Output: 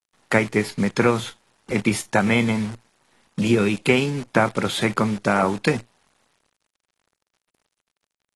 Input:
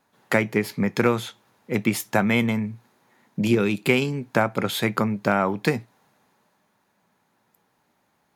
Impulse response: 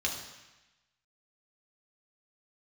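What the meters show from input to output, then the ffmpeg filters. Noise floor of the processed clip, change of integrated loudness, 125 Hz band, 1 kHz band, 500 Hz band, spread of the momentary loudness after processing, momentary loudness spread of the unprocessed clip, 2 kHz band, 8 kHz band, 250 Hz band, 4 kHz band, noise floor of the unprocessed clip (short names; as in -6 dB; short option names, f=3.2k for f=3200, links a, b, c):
under -85 dBFS, +2.0 dB, +2.0 dB, +2.5 dB, +2.0 dB, 7 LU, 7 LU, +2.0 dB, +3.0 dB, +1.5 dB, +2.5 dB, -69 dBFS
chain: -af "acrusher=bits=7:dc=4:mix=0:aa=0.000001,volume=1.5dB" -ar 24000 -c:a aac -b:a 32k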